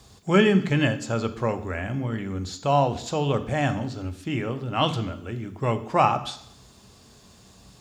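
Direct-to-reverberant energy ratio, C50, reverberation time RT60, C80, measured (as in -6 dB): 10.0 dB, 13.0 dB, 0.70 s, 16.0 dB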